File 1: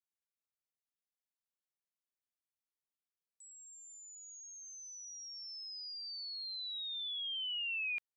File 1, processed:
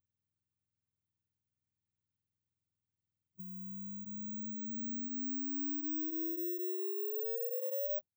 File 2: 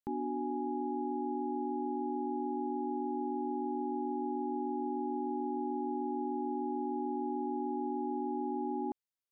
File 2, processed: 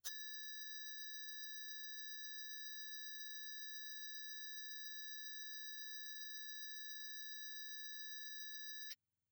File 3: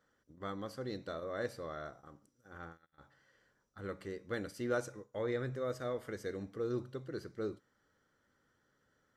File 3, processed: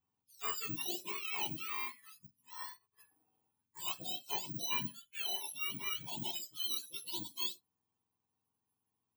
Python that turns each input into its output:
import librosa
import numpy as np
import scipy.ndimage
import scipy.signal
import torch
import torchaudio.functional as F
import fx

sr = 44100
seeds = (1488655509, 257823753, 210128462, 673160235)

y = fx.octave_mirror(x, sr, pivot_hz=1200.0)
y = fx.rider(y, sr, range_db=4, speed_s=0.5)
y = (np.kron(y[::2], np.eye(2)[0]) * 2)[:len(y)]
y = fx.noise_reduce_blind(y, sr, reduce_db=17)
y = y * 10.0 ** (2.0 / 20.0)